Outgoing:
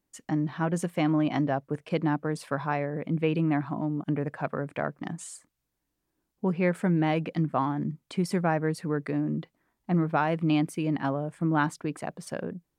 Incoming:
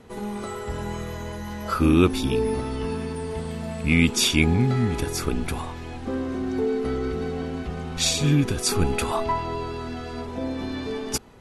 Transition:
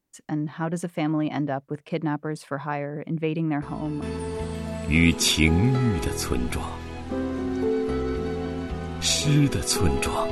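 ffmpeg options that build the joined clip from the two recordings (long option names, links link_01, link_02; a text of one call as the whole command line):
ffmpeg -i cue0.wav -i cue1.wav -filter_complex "[1:a]asplit=2[link_01][link_02];[0:a]apad=whole_dur=10.31,atrim=end=10.31,atrim=end=4.022[link_03];[link_02]atrim=start=2.978:end=9.27[link_04];[link_01]atrim=start=2.58:end=2.98,asetpts=PTS-STARTPTS,volume=-11dB,afade=type=in:duration=0.004:curve=hsin,afade=type=out:start_time=0.396:duration=0.004:curve=hsin,adelay=3620[link_05];[link_03][link_04]acrossfade=duration=0.004:curve1=hsin:curve2=hsin[link_06];[link_06][link_05]amix=inputs=2:normalize=0" out.wav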